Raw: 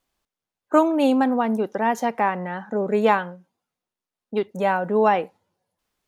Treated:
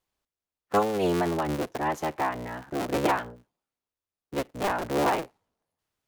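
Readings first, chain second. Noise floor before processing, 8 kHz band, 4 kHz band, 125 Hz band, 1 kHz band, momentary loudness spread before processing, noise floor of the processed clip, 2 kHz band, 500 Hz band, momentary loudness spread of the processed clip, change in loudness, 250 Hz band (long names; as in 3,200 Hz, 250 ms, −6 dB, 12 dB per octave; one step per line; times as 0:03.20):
below −85 dBFS, can't be measured, −0.5 dB, 0.0 dB, −6.0 dB, 9 LU, below −85 dBFS, −5.0 dB, −6.5 dB, 9 LU, −6.5 dB, −8.0 dB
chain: sub-harmonics by changed cycles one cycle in 3, inverted
level −6.5 dB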